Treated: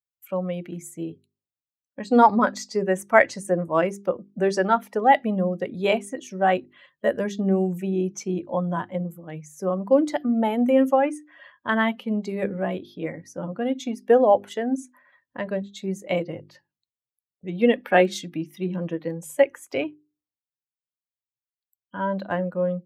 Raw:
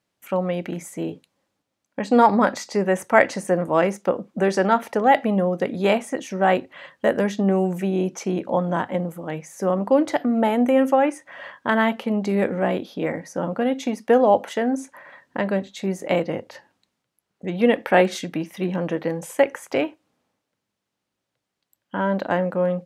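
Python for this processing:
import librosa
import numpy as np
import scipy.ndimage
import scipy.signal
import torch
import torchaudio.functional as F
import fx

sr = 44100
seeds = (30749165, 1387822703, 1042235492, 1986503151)

y = fx.bin_expand(x, sr, power=1.5)
y = fx.hum_notches(y, sr, base_hz=50, count=8)
y = y * librosa.db_to_amplitude(1.5)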